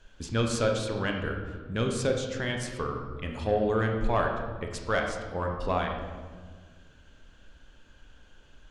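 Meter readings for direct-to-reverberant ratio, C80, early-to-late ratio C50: 2.0 dB, 6.5 dB, 4.5 dB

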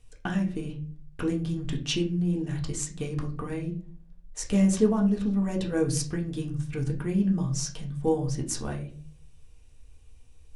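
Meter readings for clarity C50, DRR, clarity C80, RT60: 11.5 dB, 0.0 dB, 16.5 dB, 0.45 s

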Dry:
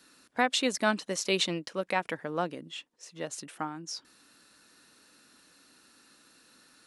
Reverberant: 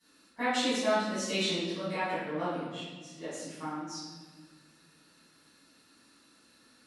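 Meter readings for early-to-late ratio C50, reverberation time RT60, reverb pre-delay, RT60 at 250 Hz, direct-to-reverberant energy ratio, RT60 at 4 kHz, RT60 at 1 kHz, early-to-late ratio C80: -2.0 dB, 1.5 s, 4 ms, 2.4 s, -17.0 dB, 1.1 s, 1.3 s, 1.5 dB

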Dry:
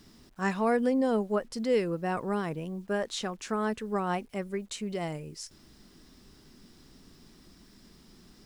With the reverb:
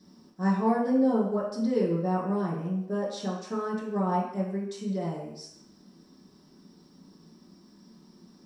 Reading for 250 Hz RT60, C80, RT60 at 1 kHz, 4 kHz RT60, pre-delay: 0.55 s, 6.5 dB, 0.75 s, 0.70 s, 3 ms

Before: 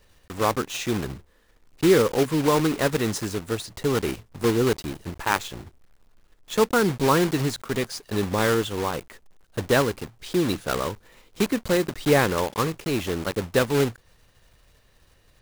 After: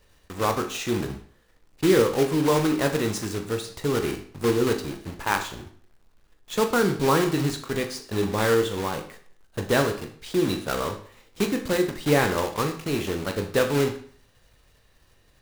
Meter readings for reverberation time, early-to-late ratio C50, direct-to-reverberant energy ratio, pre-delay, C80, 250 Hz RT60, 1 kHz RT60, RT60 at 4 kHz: 0.50 s, 10.5 dB, 5.0 dB, 20 ms, 13.5 dB, 0.50 s, 0.50 s, 0.45 s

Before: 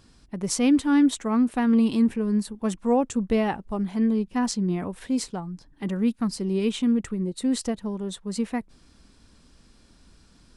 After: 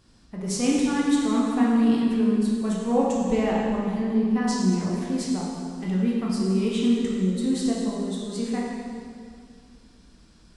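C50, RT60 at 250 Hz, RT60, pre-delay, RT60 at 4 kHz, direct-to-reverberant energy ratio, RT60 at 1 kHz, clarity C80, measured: -1.0 dB, 2.5 s, 2.1 s, 11 ms, 1.9 s, -4.5 dB, 2.0 s, 1.0 dB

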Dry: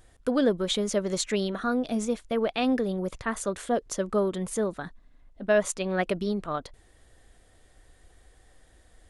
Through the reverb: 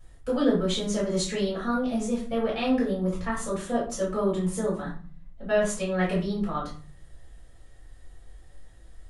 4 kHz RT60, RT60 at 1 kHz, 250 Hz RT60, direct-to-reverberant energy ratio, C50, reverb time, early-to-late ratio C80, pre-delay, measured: 0.30 s, 0.45 s, 0.75 s, -8.5 dB, 5.5 dB, 0.40 s, 11.0 dB, 4 ms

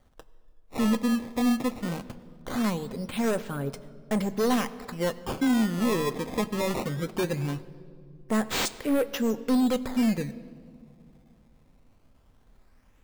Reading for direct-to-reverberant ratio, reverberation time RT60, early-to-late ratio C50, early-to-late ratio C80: 10.0 dB, 2.4 s, 16.5 dB, 17.0 dB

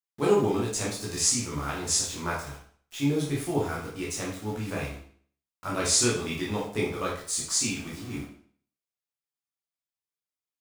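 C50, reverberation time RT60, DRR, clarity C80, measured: 4.0 dB, 0.50 s, -5.0 dB, 9.0 dB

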